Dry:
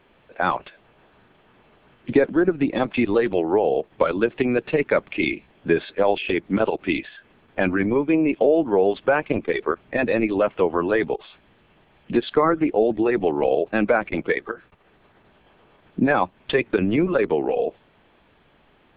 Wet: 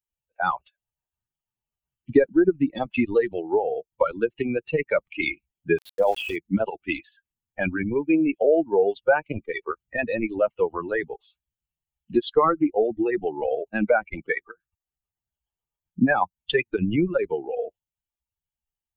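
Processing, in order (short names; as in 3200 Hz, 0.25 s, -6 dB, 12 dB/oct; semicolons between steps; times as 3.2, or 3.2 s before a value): per-bin expansion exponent 2; 5.78–6.36 sample gate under -43.5 dBFS; gain +3 dB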